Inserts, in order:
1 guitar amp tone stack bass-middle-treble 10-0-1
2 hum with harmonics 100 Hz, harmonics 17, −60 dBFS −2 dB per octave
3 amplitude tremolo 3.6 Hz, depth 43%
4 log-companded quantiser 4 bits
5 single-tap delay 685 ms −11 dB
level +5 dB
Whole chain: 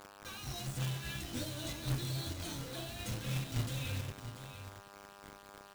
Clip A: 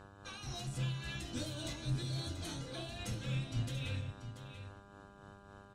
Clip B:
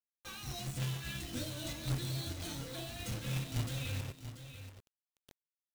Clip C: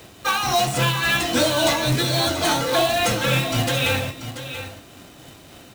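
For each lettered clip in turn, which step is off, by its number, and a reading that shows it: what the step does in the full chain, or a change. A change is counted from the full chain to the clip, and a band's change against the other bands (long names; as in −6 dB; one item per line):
4, distortion level −10 dB
2, change in momentary loudness spread −5 LU
1, 125 Hz band −10.5 dB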